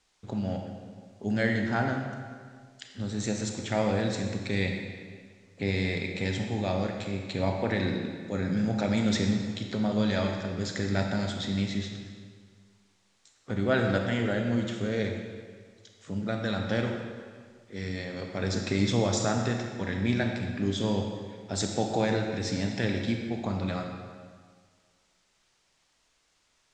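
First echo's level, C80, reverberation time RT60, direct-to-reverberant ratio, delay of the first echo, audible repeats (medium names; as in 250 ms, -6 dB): no echo, 5.0 dB, 1.8 s, 2.5 dB, no echo, no echo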